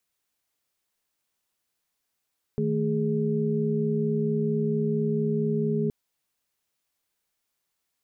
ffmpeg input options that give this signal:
-f lavfi -i "aevalsrc='0.0447*(sin(2*PI*155.56*t)+sin(2*PI*220*t)+sin(2*PI*415.3*t))':d=3.32:s=44100"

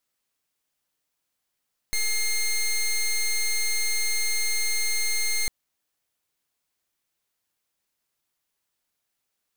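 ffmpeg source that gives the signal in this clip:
-f lavfi -i "aevalsrc='0.0631*(2*lt(mod(2120*t,1),0.13)-1)':d=3.55:s=44100"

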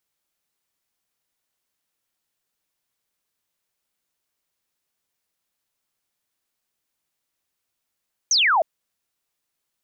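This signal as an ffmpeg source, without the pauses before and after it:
-f lavfi -i "aevalsrc='0.178*clip(t/0.002,0,1)*clip((0.31-t)/0.002,0,1)*sin(2*PI*6600*0.31/log(600/6600)*(exp(log(600/6600)*t/0.31)-1))':d=0.31:s=44100"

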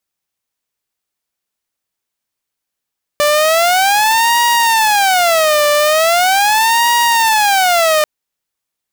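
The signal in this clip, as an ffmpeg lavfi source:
-f lavfi -i "aevalsrc='0.447*(2*mod((769*t-179/(2*PI*0.4)*sin(2*PI*0.4*t)),1)-1)':d=4.84:s=44100"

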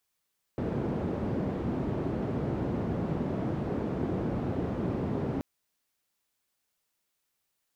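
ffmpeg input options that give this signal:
-f lavfi -i "anoisesrc=c=white:d=4.83:r=44100:seed=1,highpass=f=82,lowpass=f=310,volume=-6.9dB"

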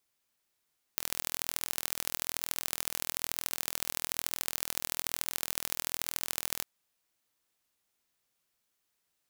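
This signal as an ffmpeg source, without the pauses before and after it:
-f lavfi -i "aevalsrc='0.708*eq(mod(n,1073),0)*(0.5+0.5*eq(mod(n,3219),0))':d=5.66:s=44100"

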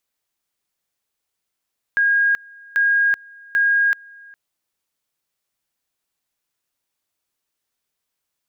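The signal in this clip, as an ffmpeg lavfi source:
-f lavfi -i "aevalsrc='pow(10,(-13.5-26.5*gte(mod(t,0.79),0.38))/20)*sin(2*PI*1630*t)':d=2.37:s=44100"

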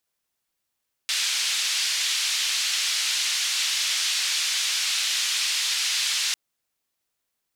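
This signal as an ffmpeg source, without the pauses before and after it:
-f lavfi -i "anoisesrc=c=white:d=5.25:r=44100:seed=1,highpass=f=2800,lowpass=f=4900,volume=-10.6dB"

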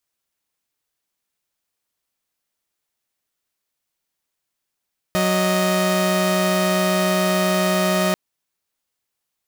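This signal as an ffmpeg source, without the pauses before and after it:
-f lavfi -i "aevalsrc='0.141*((2*mod(185*t,1)-1)+(2*mod(622.25*t,1)-1))':d=2.99:s=44100"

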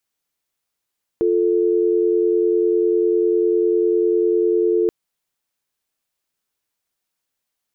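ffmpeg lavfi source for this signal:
-f lavfi -i "aevalsrc='0.141*(sin(2*PI*350*t)+sin(2*PI*440*t))':d=3.68:s=44100"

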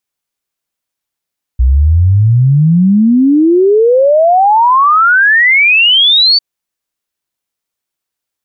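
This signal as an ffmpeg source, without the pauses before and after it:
-f lavfi -i "aevalsrc='0.596*clip(min(t,4.8-t)/0.01,0,1)*sin(2*PI*60*4.8/log(4600/60)*(exp(log(4600/60)*t/4.8)-1))':d=4.8:s=44100"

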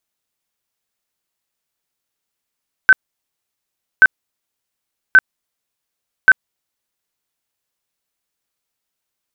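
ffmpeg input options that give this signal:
-f lavfi -i "aevalsrc='0.708*sin(2*PI*1530*mod(t,1.13))*lt(mod(t,1.13),58/1530)':d=4.52:s=44100"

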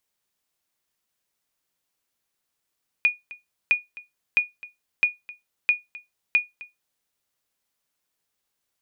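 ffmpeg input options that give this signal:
-f lavfi -i "aevalsrc='0.299*(sin(2*PI*2450*mod(t,0.66))*exp(-6.91*mod(t,0.66)/0.18)+0.0944*sin(2*PI*2450*max(mod(t,0.66)-0.26,0))*exp(-6.91*max(mod(t,0.66)-0.26,0)/0.18))':d=3.96:s=44100"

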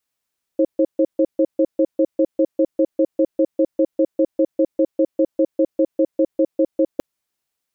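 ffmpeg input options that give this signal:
-f lavfi -i "aevalsrc='0.178*(sin(2*PI*321*t)+sin(2*PI*536*t))*clip(min(mod(t,0.2),0.06-mod(t,0.2))/0.005,0,1)':d=6.41:s=44100"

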